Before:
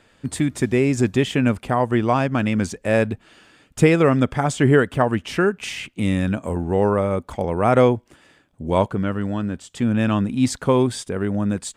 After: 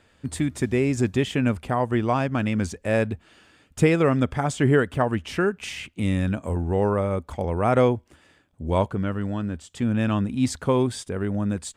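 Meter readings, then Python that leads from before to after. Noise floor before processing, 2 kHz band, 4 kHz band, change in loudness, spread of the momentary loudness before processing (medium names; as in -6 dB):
-59 dBFS, -4.0 dB, -4.0 dB, -3.5 dB, 9 LU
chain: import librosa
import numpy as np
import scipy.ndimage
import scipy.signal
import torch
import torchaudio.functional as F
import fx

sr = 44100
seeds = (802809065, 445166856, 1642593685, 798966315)

y = fx.peak_eq(x, sr, hz=77.0, db=9.5, octaves=0.49)
y = y * librosa.db_to_amplitude(-4.0)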